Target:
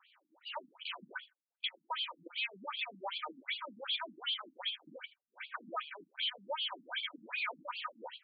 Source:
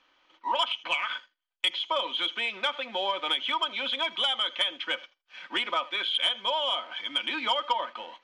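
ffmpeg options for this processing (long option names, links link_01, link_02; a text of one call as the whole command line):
ffmpeg -i in.wav -af "lowshelf=frequency=320:gain=-5.5,volume=35.5dB,asoftclip=hard,volume=-35.5dB,afftfilt=real='re*between(b*sr/1024,210*pow(3400/210,0.5+0.5*sin(2*PI*2.6*pts/sr))/1.41,210*pow(3400/210,0.5+0.5*sin(2*PI*2.6*pts/sr))*1.41)':imag='im*between(b*sr/1024,210*pow(3400/210,0.5+0.5*sin(2*PI*2.6*pts/sr))/1.41,210*pow(3400/210,0.5+0.5*sin(2*PI*2.6*pts/sr))*1.41)':win_size=1024:overlap=0.75,volume=4dB" out.wav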